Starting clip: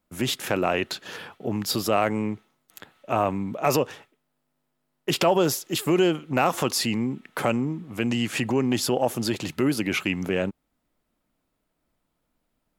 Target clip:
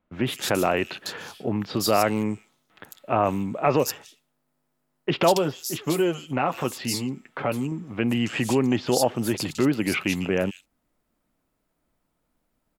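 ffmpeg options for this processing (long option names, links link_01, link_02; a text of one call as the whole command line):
ffmpeg -i in.wav -filter_complex "[0:a]asettb=1/sr,asplit=3[link_01][link_02][link_03];[link_01]atrim=end=5.334[link_04];[link_02]atrim=start=5.33:end=7.72,asetpts=PTS-STARTPTS,afade=type=in:duration=0.004:curve=qsin,afade=type=out:start_time=2.386:duration=0.004:curve=qsin,flanger=delay=6.7:depth=1.5:regen=-45:speed=1.8:shape=triangular[link_05];[link_03]atrim=start=7.716[link_06];[link_04][link_05]acrossfade=duration=0.004:curve1=hsin:curve2=qsin[link_07];[link_07][link_06]acrossfade=duration=0.004:curve1=qsin:curve2=hsin,acrossover=split=3400[link_08][link_09];[link_09]adelay=150[link_10];[link_08][link_10]amix=inputs=2:normalize=0,volume=1.5dB" out.wav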